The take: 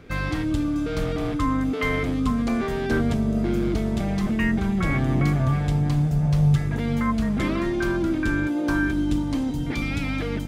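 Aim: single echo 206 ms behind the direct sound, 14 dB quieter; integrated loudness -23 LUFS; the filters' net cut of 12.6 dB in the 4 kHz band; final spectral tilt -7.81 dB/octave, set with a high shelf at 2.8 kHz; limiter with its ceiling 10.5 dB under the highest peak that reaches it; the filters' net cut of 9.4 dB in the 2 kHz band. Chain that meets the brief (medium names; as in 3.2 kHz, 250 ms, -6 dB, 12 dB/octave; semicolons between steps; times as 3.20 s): peaking EQ 2 kHz -8 dB; treble shelf 2.8 kHz -7.5 dB; peaking EQ 4 kHz -7.5 dB; peak limiter -20.5 dBFS; delay 206 ms -14 dB; trim +5 dB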